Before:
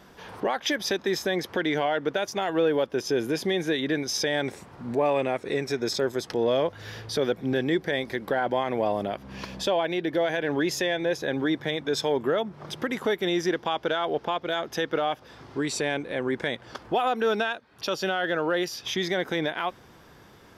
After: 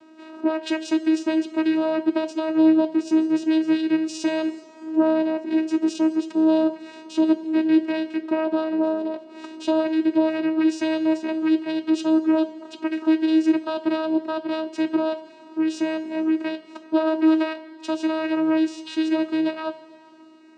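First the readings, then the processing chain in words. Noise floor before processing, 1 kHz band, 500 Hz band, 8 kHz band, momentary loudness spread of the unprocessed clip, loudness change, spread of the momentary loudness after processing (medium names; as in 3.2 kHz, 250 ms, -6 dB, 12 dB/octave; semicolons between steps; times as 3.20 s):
-52 dBFS, -2.5 dB, 0.0 dB, no reading, 7 LU, +4.5 dB, 9 LU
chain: octave divider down 1 oct, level 0 dB; vocoder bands 8, saw 317 Hz; two-slope reverb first 0.21 s, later 2.7 s, from -18 dB, DRR 6.5 dB; trim +4 dB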